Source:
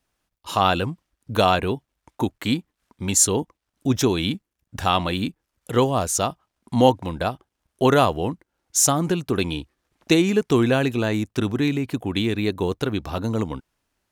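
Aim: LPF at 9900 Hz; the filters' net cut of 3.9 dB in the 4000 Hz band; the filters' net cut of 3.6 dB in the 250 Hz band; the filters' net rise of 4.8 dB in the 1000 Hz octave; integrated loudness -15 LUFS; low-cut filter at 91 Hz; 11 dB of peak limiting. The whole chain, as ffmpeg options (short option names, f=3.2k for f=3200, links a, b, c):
-af "highpass=91,lowpass=9.9k,equalizer=f=250:t=o:g=-5,equalizer=f=1k:t=o:g=7,equalizer=f=4k:t=o:g=-5.5,volume=11dB,alimiter=limit=-0.5dB:level=0:latency=1"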